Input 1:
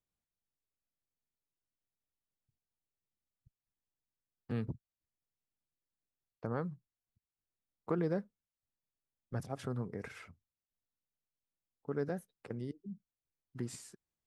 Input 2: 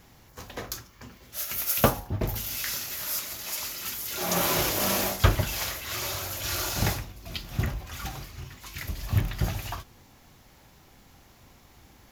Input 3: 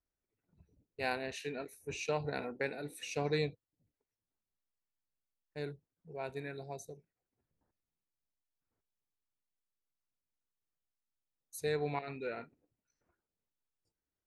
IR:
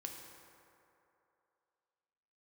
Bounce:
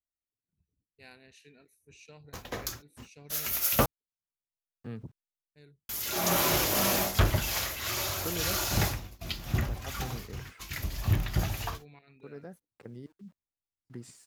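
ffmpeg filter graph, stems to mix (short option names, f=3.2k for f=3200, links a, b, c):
-filter_complex "[0:a]aeval=exprs='val(0)*gte(abs(val(0)),0.001)':c=same,adelay=350,volume=-4dB[a];[1:a]agate=range=-50dB:threshold=-43dB:ratio=16:detection=peak,adelay=1950,volume=0dB,asplit=3[b][c][d];[b]atrim=end=3.86,asetpts=PTS-STARTPTS,afade=t=out:st=3.856:d=0.004:c=hsin[e];[c]atrim=start=3.86:end=5.89,asetpts=PTS-STARTPTS,volume=0[f];[d]atrim=start=5.89,asetpts=PTS-STARTPTS,afade=t=in:d=0.004:c=hsin[g];[e][f][g]concat=n=3:v=0:a=1[h];[2:a]equalizer=f=730:w=0.6:g=-11.5,volume=-11dB,asplit=2[i][j];[j]apad=whole_len=644739[k];[a][k]sidechaincompress=threshold=-57dB:ratio=8:attack=6.5:release=612[l];[l][h][i]amix=inputs=3:normalize=0,asoftclip=type=tanh:threshold=-15dB"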